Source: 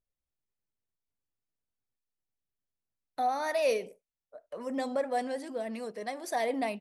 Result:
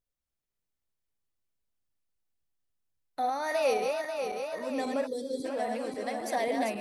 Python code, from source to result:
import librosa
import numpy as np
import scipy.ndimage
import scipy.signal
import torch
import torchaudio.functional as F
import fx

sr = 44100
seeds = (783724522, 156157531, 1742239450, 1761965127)

y = fx.reverse_delay_fb(x, sr, ms=270, feedback_pct=75, wet_db=-4.5)
y = fx.spec_box(y, sr, start_s=5.07, length_s=0.38, low_hz=540.0, high_hz=3200.0, gain_db=-25)